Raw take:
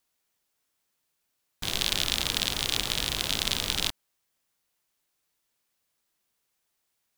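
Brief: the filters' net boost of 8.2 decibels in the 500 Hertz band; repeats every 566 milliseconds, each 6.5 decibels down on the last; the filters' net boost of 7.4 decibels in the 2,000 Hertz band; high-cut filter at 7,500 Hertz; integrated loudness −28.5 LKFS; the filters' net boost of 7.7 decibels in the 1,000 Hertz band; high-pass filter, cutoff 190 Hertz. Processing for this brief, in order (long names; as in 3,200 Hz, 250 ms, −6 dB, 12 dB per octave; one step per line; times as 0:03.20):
high-pass filter 190 Hz
low-pass filter 7,500 Hz
parametric band 500 Hz +8.5 dB
parametric band 1,000 Hz +5 dB
parametric band 2,000 Hz +8 dB
repeating echo 566 ms, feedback 47%, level −6.5 dB
level −4 dB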